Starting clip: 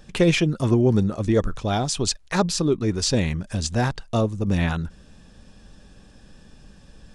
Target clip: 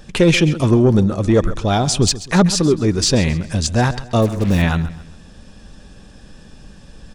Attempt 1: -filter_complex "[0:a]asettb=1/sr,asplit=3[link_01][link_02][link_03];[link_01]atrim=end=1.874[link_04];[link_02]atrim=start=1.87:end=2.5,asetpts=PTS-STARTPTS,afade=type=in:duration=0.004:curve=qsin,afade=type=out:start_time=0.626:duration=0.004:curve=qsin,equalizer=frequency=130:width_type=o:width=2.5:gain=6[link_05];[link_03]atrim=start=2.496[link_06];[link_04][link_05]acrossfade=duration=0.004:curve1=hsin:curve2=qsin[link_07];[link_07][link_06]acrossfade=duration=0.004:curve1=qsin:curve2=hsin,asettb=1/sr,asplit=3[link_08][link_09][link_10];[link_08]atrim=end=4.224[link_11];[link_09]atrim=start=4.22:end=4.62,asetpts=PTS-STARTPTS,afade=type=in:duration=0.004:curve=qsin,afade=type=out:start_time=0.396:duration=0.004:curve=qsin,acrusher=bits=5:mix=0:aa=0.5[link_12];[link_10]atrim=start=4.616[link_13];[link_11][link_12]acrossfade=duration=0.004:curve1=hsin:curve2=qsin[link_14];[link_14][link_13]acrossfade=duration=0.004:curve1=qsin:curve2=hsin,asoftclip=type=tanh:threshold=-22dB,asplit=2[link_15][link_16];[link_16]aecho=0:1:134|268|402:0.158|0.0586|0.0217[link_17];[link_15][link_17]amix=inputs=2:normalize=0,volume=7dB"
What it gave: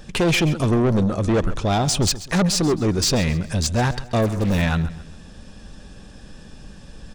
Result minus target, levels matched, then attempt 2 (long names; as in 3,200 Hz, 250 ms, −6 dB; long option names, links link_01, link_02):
soft clipping: distortion +11 dB
-filter_complex "[0:a]asettb=1/sr,asplit=3[link_01][link_02][link_03];[link_01]atrim=end=1.874[link_04];[link_02]atrim=start=1.87:end=2.5,asetpts=PTS-STARTPTS,afade=type=in:duration=0.004:curve=qsin,afade=type=out:start_time=0.626:duration=0.004:curve=qsin,equalizer=frequency=130:width_type=o:width=2.5:gain=6[link_05];[link_03]atrim=start=2.496[link_06];[link_04][link_05]acrossfade=duration=0.004:curve1=hsin:curve2=qsin[link_07];[link_07][link_06]acrossfade=duration=0.004:curve1=qsin:curve2=hsin,asettb=1/sr,asplit=3[link_08][link_09][link_10];[link_08]atrim=end=4.224[link_11];[link_09]atrim=start=4.22:end=4.62,asetpts=PTS-STARTPTS,afade=type=in:duration=0.004:curve=qsin,afade=type=out:start_time=0.396:duration=0.004:curve=qsin,acrusher=bits=5:mix=0:aa=0.5[link_12];[link_10]atrim=start=4.616[link_13];[link_11][link_12]acrossfade=duration=0.004:curve1=hsin:curve2=qsin[link_14];[link_14][link_13]acrossfade=duration=0.004:curve1=qsin:curve2=hsin,asoftclip=type=tanh:threshold=-11dB,asplit=2[link_15][link_16];[link_16]aecho=0:1:134|268|402:0.158|0.0586|0.0217[link_17];[link_15][link_17]amix=inputs=2:normalize=0,volume=7dB"